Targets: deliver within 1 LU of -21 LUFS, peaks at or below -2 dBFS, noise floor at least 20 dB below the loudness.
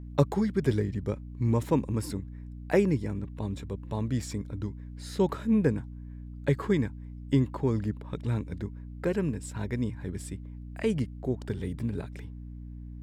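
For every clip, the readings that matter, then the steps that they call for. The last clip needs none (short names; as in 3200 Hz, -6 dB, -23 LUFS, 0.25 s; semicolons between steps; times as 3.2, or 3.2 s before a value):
hum 60 Hz; harmonics up to 300 Hz; hum level -39 dBFS; loudness -30.5 LUFS; peak -10.5 dBFS; loudness target -21.0 LUFS
-> de-hum 60 Hz, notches 5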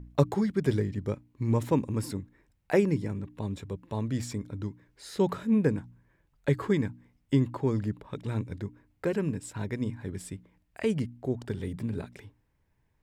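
hum none; loudness -31.0 LUFS; peak -10.0 dBFS; loudness target -21.0 LUFS
-> gain +10 dB; limiter -2 dBFS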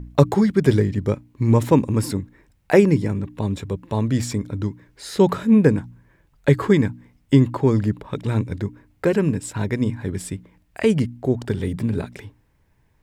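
loudness -21.0 LUFS; peak -2.0 dBFS; noise floor -62 dBFS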